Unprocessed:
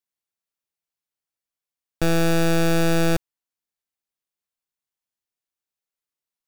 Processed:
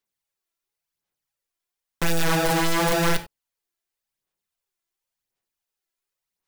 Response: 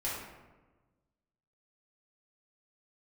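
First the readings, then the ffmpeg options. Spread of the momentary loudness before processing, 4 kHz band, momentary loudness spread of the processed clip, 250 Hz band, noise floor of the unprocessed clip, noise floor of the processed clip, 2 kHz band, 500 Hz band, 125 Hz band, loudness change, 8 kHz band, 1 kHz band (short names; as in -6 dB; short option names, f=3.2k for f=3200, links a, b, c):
6 LU, +2.5 dB, 7 LU, -4.5 dB, under -85 dBFS, under -85 dBFS, +1.5 dB, -2.5 dB, -4.5 dB, -1.0 dB, +2.5 dB, +4.0 dB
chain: -filter_complex "[0:a]aeval=exprs='0.133*(cos(1*acos(clip(val(0)/0.133,-1,1)))-cos(1*PI/2))+0.015*(cos(3*acos(clip(val(0)/0.133,-1,1)))-cos(3*PI/2))+0.0237*(cos(7*acos(clip(val(0)/0.133,-1,1)))-cos(7*PI/2))':c=same,aphaser=in_gain=1:out_gain=1:delay=3:decay=0.54:speed=0.93:type=sinusoidal,aeval=exprs='(mod(15.8*val(0)+1,2)-1)/15.8':c=same,asplit=2[a][b];[1:a]atrim=start_sample=2205,atrim=end_sample=4410[c];[b][c]afir=irnorm=-1:irlink=0,volume=-7.5dB[d];[a][d]amix=inputs=2:normalize=0,volume=4.5dB"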